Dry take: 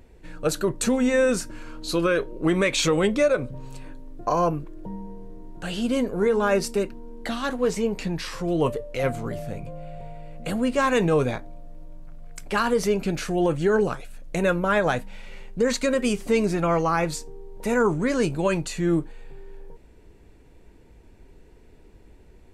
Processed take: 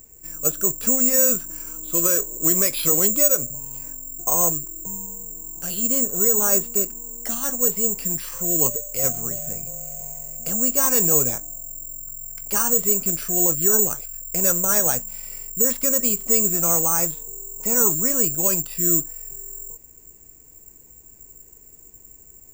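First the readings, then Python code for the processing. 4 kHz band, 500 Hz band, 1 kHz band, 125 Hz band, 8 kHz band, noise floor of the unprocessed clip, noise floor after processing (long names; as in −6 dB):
−3.5 dB, −5.0 dB, −5.5 dB, −5.0 dB, +18.0 dB, −51 dBFS, −48 dBFS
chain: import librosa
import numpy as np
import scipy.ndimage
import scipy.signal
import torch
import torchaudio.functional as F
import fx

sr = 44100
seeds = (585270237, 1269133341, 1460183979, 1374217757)

y = fx.dynamic_eq(x, sr, hz=2100.0, q=2.4, threshold_db=-44.0, ratio=4.0, max_db=-4)
y = (np.kron(scipy.signal.resample_poly(y, 1, 6), np.eye(6)[0]) * 6)[:len(y)]
y = y * 10.0 ** (-5.0 / 20.0)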